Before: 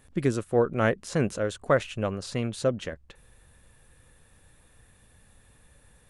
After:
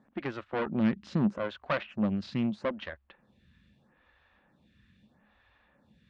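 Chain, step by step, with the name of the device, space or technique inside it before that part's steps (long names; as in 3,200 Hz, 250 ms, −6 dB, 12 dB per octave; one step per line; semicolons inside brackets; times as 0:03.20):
vibe pedal into a guitar amplifier (phaser with staggered stages 0.78 Hz; tube saturation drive 26 dB, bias 0.7; loudspeaker in its box 76–4,000 Hz, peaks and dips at 110 Hz −8 dB, 210 Hz +9 dB, 450 Hz −9 dB)
level +4 dB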